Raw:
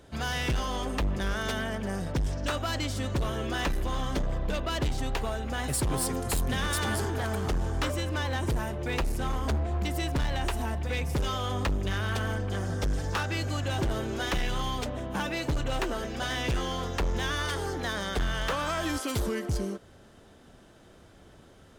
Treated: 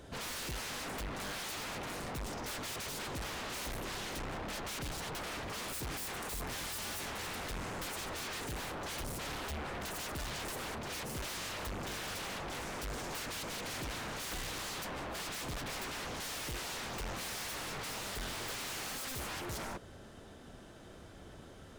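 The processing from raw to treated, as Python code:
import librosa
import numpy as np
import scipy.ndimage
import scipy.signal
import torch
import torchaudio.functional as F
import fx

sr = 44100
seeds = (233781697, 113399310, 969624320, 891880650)

y = 10.0 ** (-38.0 / 20.0) * (np.abs((x / 10.0 ** (-38.0 / 20.0) + 3.0) % 4.0 - 2.0) - 1.0)
y = F.gain(torch.from_numpy(y), 1.5).numpy()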